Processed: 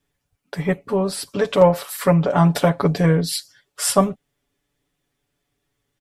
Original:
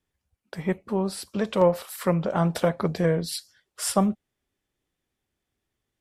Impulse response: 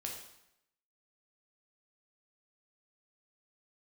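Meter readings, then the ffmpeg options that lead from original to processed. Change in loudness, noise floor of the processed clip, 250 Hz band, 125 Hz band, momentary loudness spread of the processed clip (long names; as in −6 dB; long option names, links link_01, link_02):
+6.5 dB, −77 dBFS, +5.5 dB, +8.0 dB, 9 LU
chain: -af "aecho=1:1:7:0.8,volume=5dB"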